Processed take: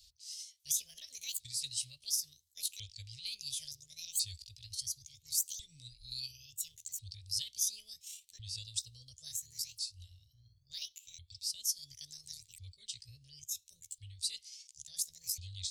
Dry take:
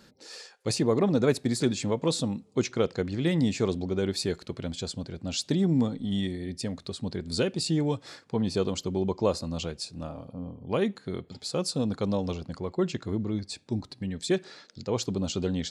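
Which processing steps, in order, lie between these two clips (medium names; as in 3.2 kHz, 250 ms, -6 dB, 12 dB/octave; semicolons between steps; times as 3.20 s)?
sawtooth pitch modulation +10.5 st, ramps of 1398 ms; inverse Chebyshev band-stop 180–1500 Hz, stop band 50 dB; trim +1 dB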